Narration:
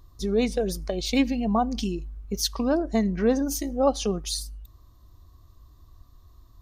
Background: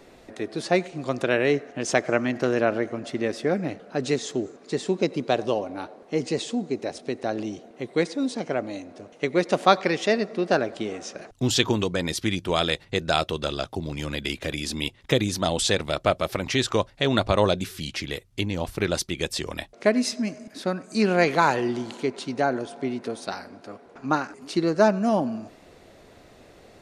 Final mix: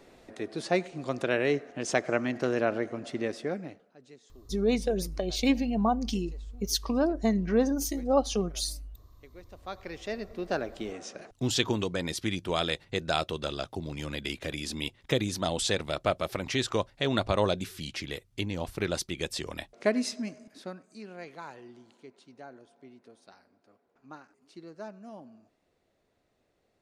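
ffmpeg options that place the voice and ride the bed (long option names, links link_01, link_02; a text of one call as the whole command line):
ffmpeg -i stem1.wav -i stem2.wav -filter_complex "[0:a]adelay=4300,volume=-2.5dB[link_01];[1:a]volume=18dB,afade=type=out:start_time=3.22:duration=0.73:silence=0.0668344,afade=type=in:start_time=9.59:duration=1.45:silence=0.0707946,afade=type=out:start_time=19.96:duration=1.05:silence=0.125893[link_02];[link_01][link_02]amix=inputs=2:normalize=0" out.wav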